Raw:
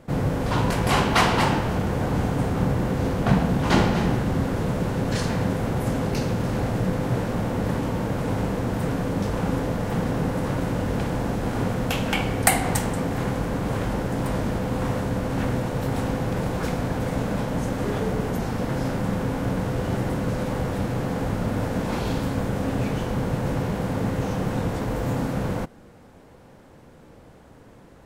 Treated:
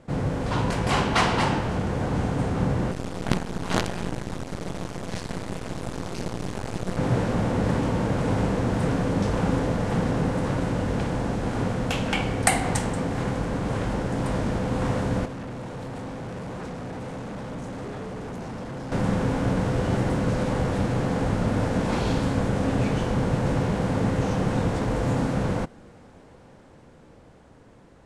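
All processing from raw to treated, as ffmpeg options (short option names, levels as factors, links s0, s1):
-filter_complex "[0:a]asettb=1/sr,asplit=3[s0][s1][s2];[s0]atrim=end=2.914[s3];[s1]atrim=start=2.91:end=6.97,asetpts=PTS-STARTPTS,afade=t=in:d=0.004:c=qsin,afade=t=out:st=4.056:d=0.004:c=qsin,acrusher=bits=3:dc=4:mix=0:aa=0.000001,tremolo=f=180:d=0.824[s4];[s2]atrim=start=6.966[s5];[s3][s4]acrossfade=d=0.004:c1=hsin:c2=qsin[s6];[s6][s5]acrossfade=d=0.004:c1=qsin:c2=hsin,asettb=1/sr,asplit=3[s7][s8][s9];[s7]atrim=end=15.254[s10];[s8]atrim=start=15.25:end=18.92,asetpts=PTS-STARTPTS,afade=t=in:d=0.004:c=qsin,afade=t=out:st=3.666:d=0.004:c=qsin,acrossover=split=100|1200[s11][s12][s13];[s11]acompressor=threshold=0.00562:ratio=4[s14];[s12]acompressor=threshold=0.0282:ratio=4[s15];[s13]acompressor=threshold=0.00398:ratio=4[s16];[s14][s15][s16]amix=inputs=3:normalize=0,volume=44.7,asoftclip=hard,volume=0.0224[s17];[s9]atrim=start=18.916[s18];[s10][s17]acrossfade=d=0.004:c1=hsin:c2=qsin[s19];[s19][s18]acrossfade=d=0.004:c1=qsin:c2=hsin,lowpass=f=9700:w=0.5412,lowpass=f=9700:w=1.3066,dynaudnorm=f=350:g=13:m=1.58,volume=0.75"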